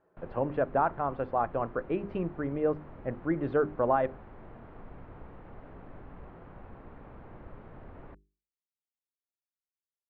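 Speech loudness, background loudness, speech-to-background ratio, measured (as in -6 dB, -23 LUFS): -31.0 LUFS, -50.0 LUFS, 19.0 dB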